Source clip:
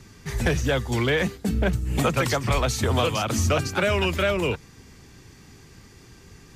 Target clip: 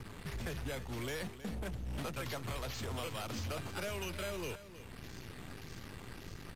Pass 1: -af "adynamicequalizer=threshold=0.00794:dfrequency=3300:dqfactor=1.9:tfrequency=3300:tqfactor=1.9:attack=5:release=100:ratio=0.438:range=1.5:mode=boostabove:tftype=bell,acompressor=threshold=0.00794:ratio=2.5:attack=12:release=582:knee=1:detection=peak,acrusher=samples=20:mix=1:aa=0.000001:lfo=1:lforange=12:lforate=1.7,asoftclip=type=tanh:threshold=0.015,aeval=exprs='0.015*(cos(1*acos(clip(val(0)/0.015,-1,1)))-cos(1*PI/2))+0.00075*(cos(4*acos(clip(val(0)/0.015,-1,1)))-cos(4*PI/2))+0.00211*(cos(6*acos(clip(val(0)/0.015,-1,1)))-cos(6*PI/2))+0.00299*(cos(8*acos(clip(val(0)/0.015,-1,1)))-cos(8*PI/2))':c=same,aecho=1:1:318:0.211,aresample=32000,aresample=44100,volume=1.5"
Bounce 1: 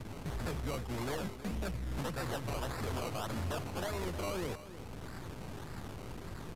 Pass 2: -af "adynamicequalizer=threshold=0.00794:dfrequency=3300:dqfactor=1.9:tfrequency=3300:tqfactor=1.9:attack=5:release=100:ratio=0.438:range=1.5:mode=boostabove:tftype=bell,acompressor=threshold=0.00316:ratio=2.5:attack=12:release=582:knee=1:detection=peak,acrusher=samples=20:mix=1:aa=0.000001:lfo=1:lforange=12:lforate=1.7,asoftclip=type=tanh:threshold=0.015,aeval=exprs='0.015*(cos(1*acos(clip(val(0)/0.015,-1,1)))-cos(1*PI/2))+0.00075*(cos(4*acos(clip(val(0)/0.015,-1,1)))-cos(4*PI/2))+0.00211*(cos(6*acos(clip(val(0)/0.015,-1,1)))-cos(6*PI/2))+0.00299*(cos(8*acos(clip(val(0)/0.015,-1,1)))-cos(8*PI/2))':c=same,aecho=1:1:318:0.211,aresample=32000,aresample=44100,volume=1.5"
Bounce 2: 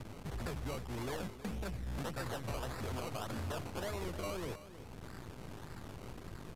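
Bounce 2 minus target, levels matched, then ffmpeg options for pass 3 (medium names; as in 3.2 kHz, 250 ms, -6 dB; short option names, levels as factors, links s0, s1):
decimation with a swept rate: distortion +7 dB
-af "adynamicequalizer=threshold=0.00794:dfrequency=3300:dqfactor=1.9:tfrequency=3300:tqfactor=1.9:attack=5:release=100:ratio=0.438:range=1.5:mode=boostabove:tftype=bell,acompressor=threshold=0.00316:ratio=2.5:attack=12:release=582:knee=1:detection=peak,acrusher=samples=6:mix=1:aa=0.000001:lfo=1:lforange=3.6:lforate=1.7,asoftclip=type=tanh:threshold=0.015,aeval=exprs='0.015*(cos(1*acos(clip(val(0)/0.015,-1,1)))-cos(1*PI/2))+0.00075*(cos(4*acos(clip(val(0)/0.015,-1,1)))-cos(4*PI/2))+0.00211*(cos(6*acos(clip(val(0)/0.015,-1,1)))-cos(6*PI/2))+0.00299*(cos(8*acos(clip(val(0)/0.015,-1,1)))-cos(8*PI/2))':c=same,aecho=1:1:318:0.211,aresample=32000,aresample=44100,volume=1.5"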